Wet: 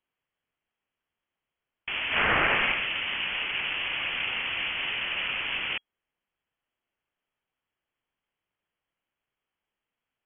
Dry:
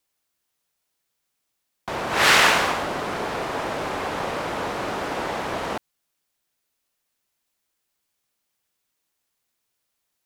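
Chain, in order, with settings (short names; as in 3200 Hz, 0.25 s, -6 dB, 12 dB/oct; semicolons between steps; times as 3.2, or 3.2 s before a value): added harmonics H 7 -27 dB, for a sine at -3 dBFS; limiter -12.5 dBFS, peak gain reduction 8.5 dB; inverted band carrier 3300 Hz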